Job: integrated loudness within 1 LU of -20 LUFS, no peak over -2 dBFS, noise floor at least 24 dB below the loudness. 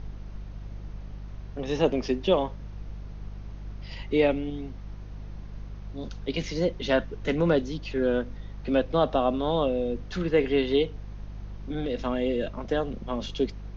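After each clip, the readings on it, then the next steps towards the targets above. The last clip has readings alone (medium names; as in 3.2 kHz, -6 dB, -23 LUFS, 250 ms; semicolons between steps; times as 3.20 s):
hum 50 Hz; highest harmonic 200 Hz; hum level -36 dBFS; noise floor -41 dBFS; noise floor target -52 dBFS; loudness -27.5 LUFS; peak level -9.5 dBFS; loudness target -20.0 LUFS
-> de-hum 50 Hz, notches 4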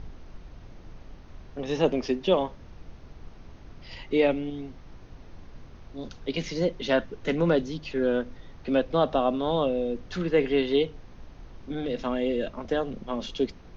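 hum not found; noise floor -48 dBFS; noise floor target -52 dBFS
-> noise print and reduce 6 dB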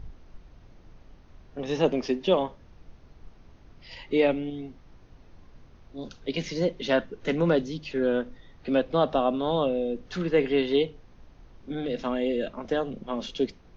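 noise floor -54 dBFS; loudness -27.5 LUFS; peak level -10.0 dBFS; loudness target -20.0 LUFS
-> trim +7.5 dB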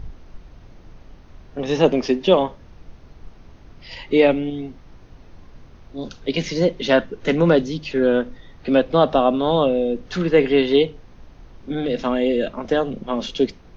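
loudness -20.0 LUFS; peak level -2.5 dBFS; noise floor -47 dBFS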